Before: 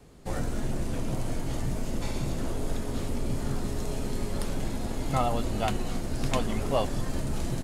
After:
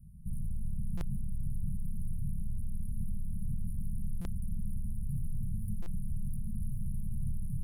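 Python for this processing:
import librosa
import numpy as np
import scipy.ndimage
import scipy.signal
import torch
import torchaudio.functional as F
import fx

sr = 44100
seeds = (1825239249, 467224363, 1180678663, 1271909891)

p1 = fx.low_shelf(x, sr, hz=300.0, db=9.5)
p2 = fx.hum_notches(p1, sr, base_hz=60, count=2)
p3 = np.clip(10.0 ** (25.5 / 20.0) * p2, -1.0, 1.0) / 10.0 ** (25.5 / 20.0)
p4 = fx.brickwall_bandstop(p3, sr, low_hz=220.0, high_hz=9000.0)
p5 = p4 + fx.echo_single(p4, sr, ms=294, db=-10.0, dry=0)
p6 = fx.buffer_glitch(p5, sr, at_s=(0.97, 4.21, 5.82), block=256, repeats=6)
y = F.gain(torch.from_numpy(p6), -4.5).numpy()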